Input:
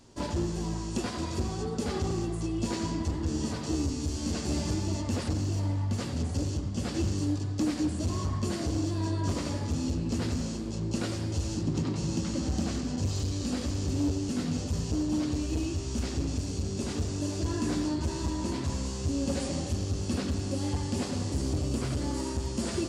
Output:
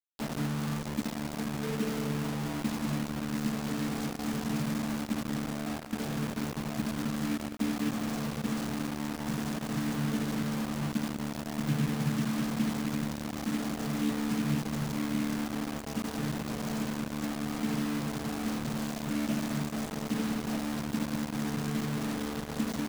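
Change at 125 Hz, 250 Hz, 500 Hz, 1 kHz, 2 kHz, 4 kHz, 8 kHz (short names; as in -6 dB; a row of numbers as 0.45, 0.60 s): -5.5, +0.5, -3.5, +1.5, +4.5, -2.0, -4.0 dB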